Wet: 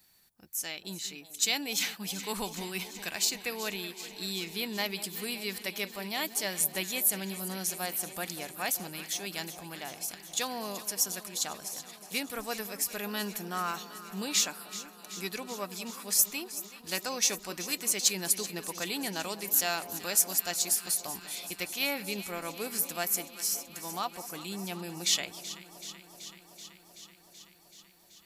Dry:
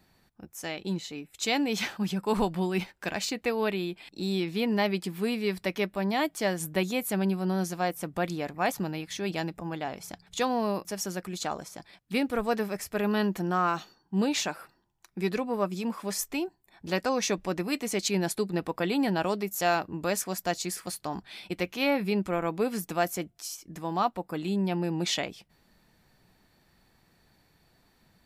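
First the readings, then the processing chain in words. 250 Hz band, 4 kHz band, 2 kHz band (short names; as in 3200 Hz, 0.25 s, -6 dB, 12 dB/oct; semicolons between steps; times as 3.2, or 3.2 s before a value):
-11.0 dB, +3.0 dB, -2.5 dB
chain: pre-emphasis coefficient 0.9; on a send: echo with dull and thin repeats by turns 0.19 s, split 1000 Hz, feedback 87%, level -13 dB; on the sum: gain +8 dB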